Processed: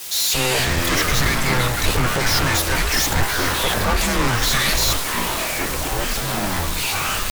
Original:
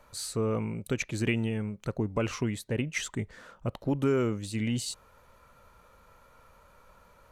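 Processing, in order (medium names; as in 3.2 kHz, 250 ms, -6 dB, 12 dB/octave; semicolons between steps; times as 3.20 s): RIAA curve recording; pitch shift +2.5 st; waveshaping leveller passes 5; formant shift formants -4 st; static phaser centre 1.9 kHz, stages 8; in parallel at -5 dB: word length cut 6-bit, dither triangular; on the sum: fuzz box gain 37 dB, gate -45 dBFS; repeats whose band climbs or falls 514 ms, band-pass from 2.5 kHz, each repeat -0.7 oct, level -5 dB; frequency shift -120 Hz; ever faster or slower copies 147 ms, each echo -7 st, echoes 3; three bands expanded up and down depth 70%; trim -6.5 dB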